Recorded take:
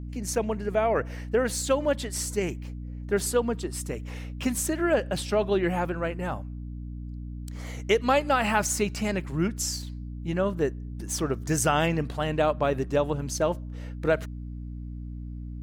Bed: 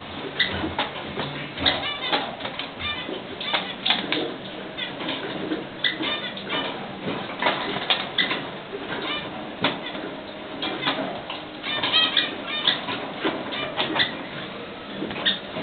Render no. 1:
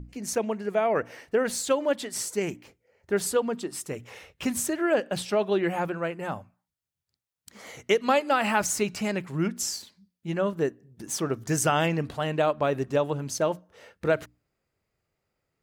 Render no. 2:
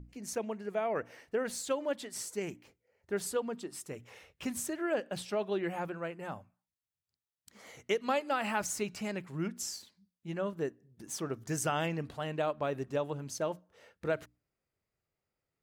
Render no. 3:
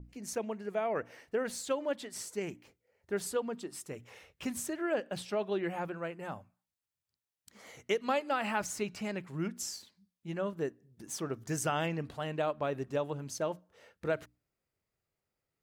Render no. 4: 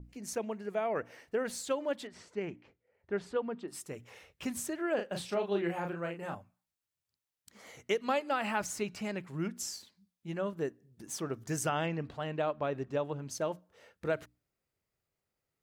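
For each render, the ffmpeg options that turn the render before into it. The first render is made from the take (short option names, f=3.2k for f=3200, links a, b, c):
-af "bandreject=f=60:t=h:w=6,bandreject=f=120:t=h:w=6,bandreject=f=180:t=h:w=6,bandreject=f=240:t=h:w=6,bandreject=f=300:t=h:w=6"
-af "volume=-8.5dB"
-af "adynamicequalizer=threshold=0.00282:dfrequency=5400:dqfactor=0.7:tfrequency=5400:tqfactor=0.7:attack=5:release=100:ratio=0.375:range=2.5:mode=cutabove:tftype=highshelf"
-filter_complex "[0:a]asettb=1/sr,asplit=3[a][b][c];[a]atrim=end=2.074[d];[b]atrim=start=2.07:end=3.68,asetpts=PTS-STARTPTS,afade=t=in:d=0.004:c=qsin,afade=t=out:st=1.606:d=0.004:c=qsin,lowpass=2.8k[e];[c]atrim=start=3.676[f];[d][e]acrossfade=d=0.004:c1=hsin:c2=qsin[g];[g][f]acrossfade=d=0.004:c1=qsin:c2=hsin,asettb=1/sr,asplit=3[h][i][j];[h]atrim=end=4.954[k];[i]atrim=start=4.95:end=6.35,asetpts=PTS-STARTPTS,afade=t=in:d=0.004:c=qsin,afade=t=out:st=1.396:d=0.004:c=qsin,asplit=2[l][m];[m]adelay=35,volume=-5dB[n];[l][n]amix=inputs=2:normalize=0,atrim=end_sample=61740[o];[j]atrim=start=6.346[p];[k][o]acrossfade=d=0.004:c1=hsin:c2=qsin[q];[q][p]acrossfade=d=0.004:c1=qsin:c2=hsin,asettb=1/sr,asplit=3[r][s][t];[r]atrim=end=11.694[u];[s]atrim=start=11.69:end=13.31,asetpts=PTS-STARTPTS,afade=t=in:d=0.004:c=qsin,afade=t=out:st=1.616:d=0.004:c=qsin,equalizer=f=12k:w=0.71:g=-14.5[v];[t]atrim=start=13.306[w];[u][v]acrossfade=d=0.004:c1=hsin:c2=qsin[x];[x][w]acrossfade=d=0.004:c1=qsin:c2=hsin"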